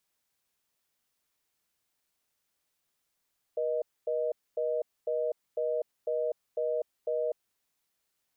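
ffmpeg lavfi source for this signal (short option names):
-f lavfi -i "aevalsrc='0.0316*(sin(2*PI*480*t)+sin(2*PI*620*t))*clip(min(mod(t,0.5),0.25-mod(t,0.5))/0.005,0,1)':d=3.75:s=44100"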